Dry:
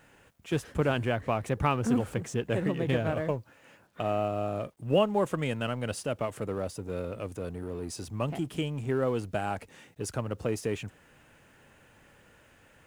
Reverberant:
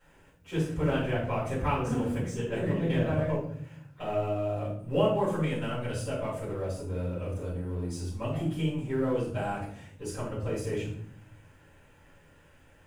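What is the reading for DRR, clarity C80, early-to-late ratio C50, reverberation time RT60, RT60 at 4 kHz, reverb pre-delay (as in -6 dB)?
-12.5 dB, 8.5 dB, 3.5 dB, 0.60 s, 0.40 s, 4 ms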